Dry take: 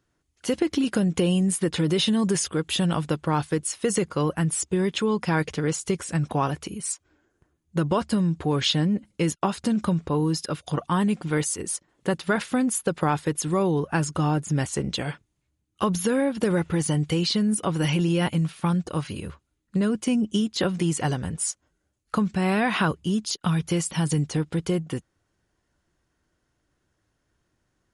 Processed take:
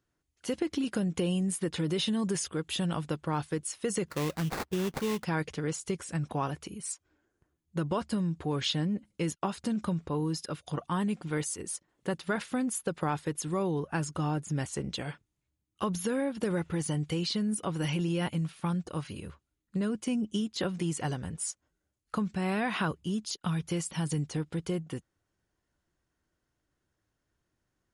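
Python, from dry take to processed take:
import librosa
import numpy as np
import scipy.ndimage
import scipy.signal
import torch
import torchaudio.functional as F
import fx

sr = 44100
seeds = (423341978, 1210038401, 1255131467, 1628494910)

y = fx.sample_hold(x, sr, seeds[0], rate_hz=3100.0, jitter_pct=20, at=(4.08, 5.24))
y = y * librosa.db_to_amplitude(-7.5)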